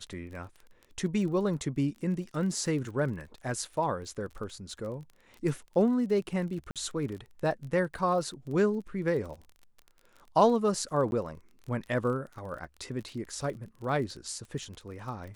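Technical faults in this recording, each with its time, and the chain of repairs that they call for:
crackle 31/s -39 dBFS
6.71–6.76 gap 47 ms
11.11–11.12 gap 11 ms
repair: de-click; interpolate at 6.71, 47 ms; interpolate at 11.11, 11 ms

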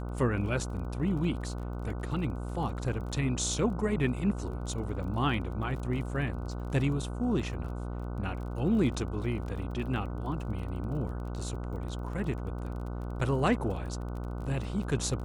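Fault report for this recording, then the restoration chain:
buzz 60 Hz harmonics 25 -36 dBFS
crackle 29/s -40 dBFS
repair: de-click; de-hum 60 Hz, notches 25

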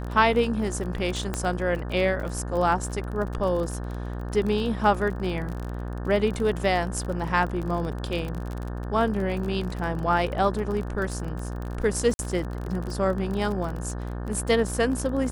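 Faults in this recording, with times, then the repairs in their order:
buzz 60 Hz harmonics 30 -32 dBFS
crackle 30/s -30 dBFS
1.34 pop -13 dBFS
12.14–12.19 gap 51 ms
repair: de-click; de-hum 60 Hz, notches 30; interpolate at 12.14, 51 ms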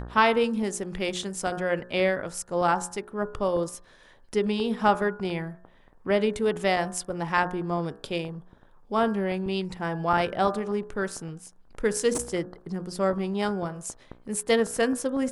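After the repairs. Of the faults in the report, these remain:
none

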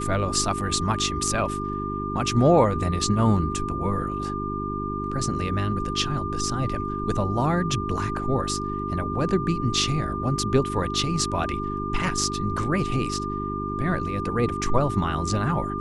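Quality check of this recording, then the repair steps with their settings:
hum 50 Hz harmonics 8 -31 dBFS
tone 1200 Hz -30 dBFS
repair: de-hum 50 Hz, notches 8; notch 1200 Hz, Q 30

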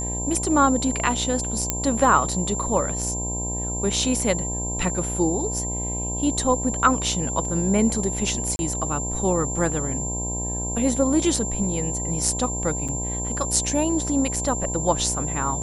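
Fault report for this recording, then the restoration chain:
buzz 60 Hz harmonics 17 -30 dBFS
tone 7300 Hz -28 dBFS
1.7 pop -4 dBFS
8.56–8.59 gap 31 ms
12.88–12.89 gap 6.2 ms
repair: de-click; de-hum 60 Hz, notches 17; notch 7300 Hz, Q 30; interpolate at 8.56, 31 ms; interpolate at 12.88, 6.2 ms

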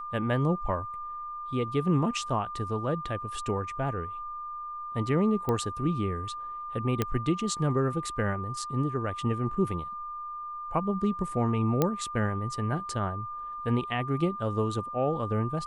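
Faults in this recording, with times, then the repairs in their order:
tone 1200 Hz -35 dBFS
5.49 pop -17 dBFS
7.02 pop -12 dBFS
11.82 pop -11 dBFS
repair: de-click; notch 1200 Hz, Q 30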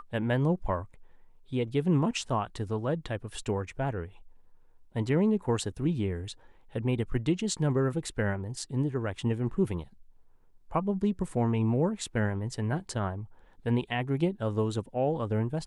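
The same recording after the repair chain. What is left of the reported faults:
none

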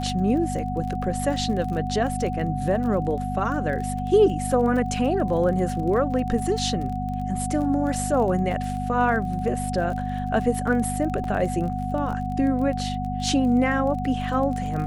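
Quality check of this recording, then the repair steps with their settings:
crackle 28/s -31 dBFS
hum 50 Hz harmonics 5 -29 dBFS
tone 740 Hz -30 dBFS
11.24 gap 2.5 ms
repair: de-click; notch 740 Hz, Q 30; de-hum 50 Hz, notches 5; interpolate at 11.24, 2.5 ms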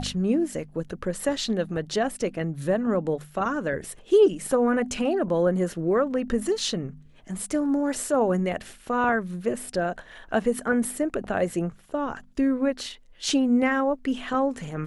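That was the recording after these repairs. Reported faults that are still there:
none

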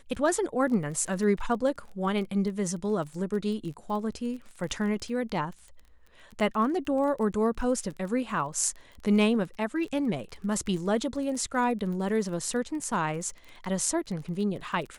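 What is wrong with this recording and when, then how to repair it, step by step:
crackle 21/s -36 dBFS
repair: de-click

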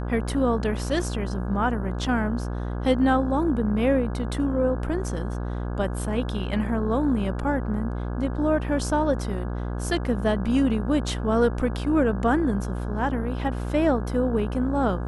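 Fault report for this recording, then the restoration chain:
buzz 60 Hz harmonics 28 -29 dBFS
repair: de-hum 60 Hz, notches 28

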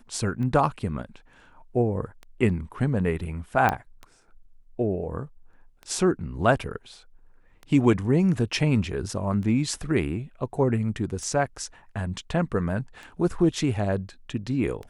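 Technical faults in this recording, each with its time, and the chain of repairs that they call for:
tick 33 1/3 rpm -25 dBFS
3.69 pop -10 dBFS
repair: de-click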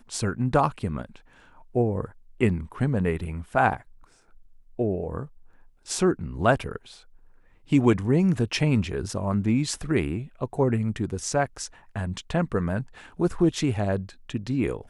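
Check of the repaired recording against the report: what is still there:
none

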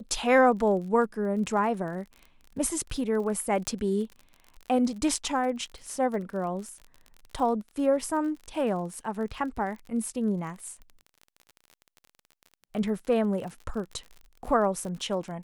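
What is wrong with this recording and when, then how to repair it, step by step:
crackle 39/s -37 dBFS
3.67 pop -14 dBFS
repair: de-click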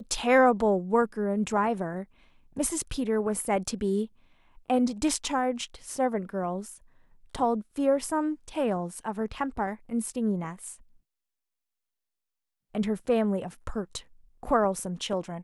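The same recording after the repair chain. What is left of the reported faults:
none

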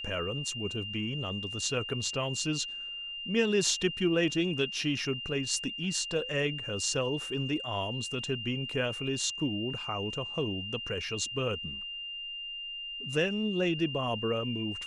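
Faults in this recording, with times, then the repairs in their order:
tone 2800 Hz -37 dBFS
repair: notch 2800 Hz, Q 30

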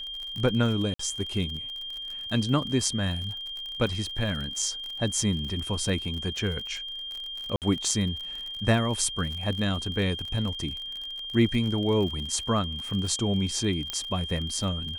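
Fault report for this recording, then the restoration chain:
crackle 45/s -33 dBFS
tone 3200 Hz -34 dBFS
0.94–0.99 gap 54 ms
7.56–7.62 gap 58 ms
13.9 pop -14 dBFS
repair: de-click; notch 3200 Hz, Q 30; interpolate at 0.94, 54 ms; interpolate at 7.56, 58 ms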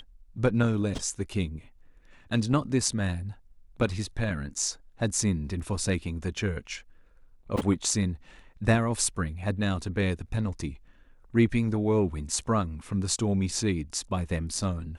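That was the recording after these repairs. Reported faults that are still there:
none

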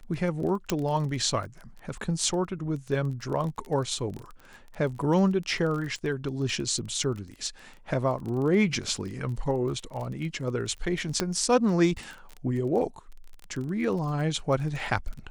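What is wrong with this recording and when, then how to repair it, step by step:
crackle 24/s -33 dBFS
0.7 pop -11 dBFS
11.2 pop -10 dBFS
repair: de-click

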